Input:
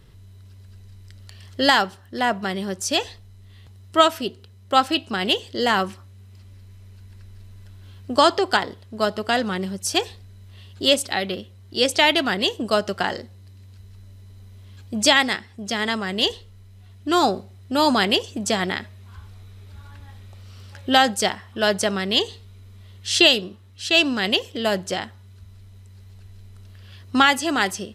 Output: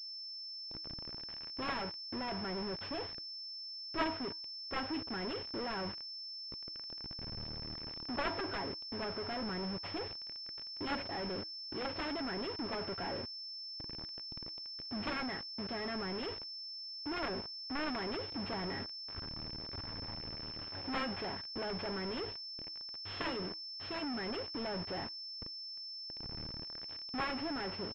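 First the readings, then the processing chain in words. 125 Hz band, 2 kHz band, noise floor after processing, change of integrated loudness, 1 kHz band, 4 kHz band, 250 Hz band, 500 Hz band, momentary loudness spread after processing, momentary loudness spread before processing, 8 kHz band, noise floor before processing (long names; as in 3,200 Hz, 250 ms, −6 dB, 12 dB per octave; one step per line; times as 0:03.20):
−12.5 dB, −19.5 dB, −46 dBFS, −18.5 dB, −19.0 dB, −16.5 dB, −15.0 dB, −17.5 dB, 5 LU, 14 LU, below −35 dB, −47 dBFS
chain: high-shelf EQ 2,000 Hz −10.5 dB
comb filter 7.3 ms, depth 38%
log-companded quantiser 2 bits
tuned comb filter 320 Hz, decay 0.24 s, harmonics odd, mix 50%
wave folding −13.5 dBFS
switching amplifier with a slow clock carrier 5,300 Hz
level −7.5 dB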